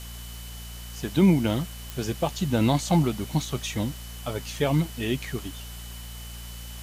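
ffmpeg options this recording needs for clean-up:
-af "adeclick=t=4,bandreject=f=58.4:t=h:w=4,bandreject=f=116.8:t=h:w=4,bandreject=f=175.2:t=h:w=4,bandreject=f=233.6:t=h:w=4,bandreject=f=3000:w=30,afwtdn=0.0063"

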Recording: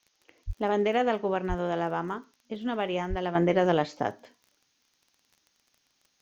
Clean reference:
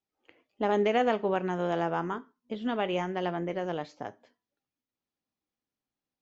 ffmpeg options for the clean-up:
-filter_complex "[0:a]adeclick=t=4,asplit=3[s0][s1][s2];[s0]afade=t=out:st=0.46:d=0.02[s3];[s1]highpass=f=140:w=0.5412,highpass=f=140:w=1.3066,afade=t=in:st=0.46:d=0.02,afade=t=out:st=0.58:d=0.02[s4];[s2]afade=t=in:st=0.58:d=0.02[s5];[s3][s4][s5]amix=inputs=3:normalize=0,asplit=3[s6][s7][s8];[s6]afade=t=out:st=1.48:d=0.02[s9];[s7]highpass=f=140:w=0.5412,highpass=f=140:w=1.3066,afade=t=in:st=1.48:d=0.02,afade=t=out:st=1.6:d=0.02[s10];[s8]afade=t=in:st=1.6:d=0.02[s11];[s9][s10][s11]amix=inputs=3:normalize=0,asplit=3[s12][s13][s14];[s12]afade=t=out:st=3.09:d=0.02[s15];[s13]highpass=f=140:w=0.5412,highpass=f=140:w=1.3066,afade=t=in:st=3.09:d=0.02,afade=t=out:st=3.21:d=0.02[s16];[s14]afade=t=in:st=3.21:d=0.02[s17];[s15][s16][s17]amix=inputs=3:normalize=0,agate=range=0.0891:threshold=0.000562,asetnsamples=n=441:p=0,asendcmd='3.35 volume volume -9.5dB',volume=1"

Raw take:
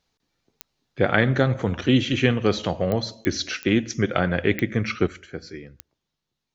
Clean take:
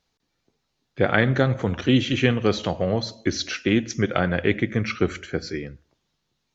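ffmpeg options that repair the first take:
-af "adeclick=t=4,asetnsamples=n=441:p=0,asendcmd='5.07 volume volume 7.5dB',volume=1"

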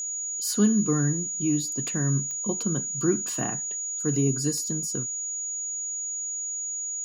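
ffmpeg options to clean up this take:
-af "adeclick=t=4,bandreject=f=6800:w=30"

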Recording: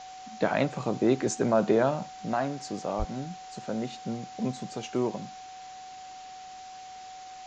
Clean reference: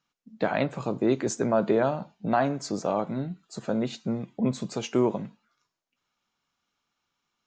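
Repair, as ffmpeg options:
-filter_complex "[0:a]bandreject=f=750:w=30,asplit=3[s0][s1][s2];[s0]afade=t=out:st=2.98:d=0.02[s3];[s1]highpass=f=140:w=0.5412,highpass=f=140:w=1.3066,afade=t=in:st=2.98:d=0.02,afade=t=out:st=3.1:d=0.02[s4];[s2]afade=t=in:st=3.1:d=0.02[s5];[s3][s4][s5]amix=inputs=3:normalize=0,afwtdn=0.004,asetnsamples=n=441:p=0,asendcmd='2.09 volume volume 5dB',volume=1"

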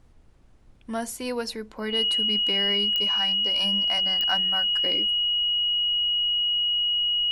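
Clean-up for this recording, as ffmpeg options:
-af "adeclick=t=4,bandreject=f=58.5:t=h:w=4,bandreject=f=117:t=h:w=4,bandreject=f=175.5:t=h:w=4,bandreject=f=234:t=h:w=4,bandreject=f=292.5:t=h:w=4,bandreject=f=351:t=h:w=4,bandreject=f=2900:w=30,agate=range=0.0891:threshold=0.00631"

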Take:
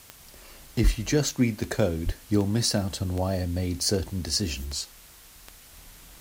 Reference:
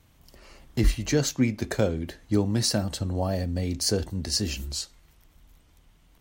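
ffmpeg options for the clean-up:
-filter_complex "[0:a]adeclick=t=4,asplit=3[s0][s1][s2];[s0]afade=t=out:st=2.05:d=0.02[s3];[s1]highpass=f=140:w=0.5412,highpass=f=140:w=1.3066,afade=t=in:st=2.05:d=0.02,afade=t=out:st=2.17:d=0.02[s4];[s2]afade=t=in:st=2.17:d=0.02[s5];[s3][s4][s5]amix=inputs=3:normalize=0,afwtdn=0.0032,asetnsamples=n=441:p=0,asendcmd='5.73 volume volume -7dB',volume=1"

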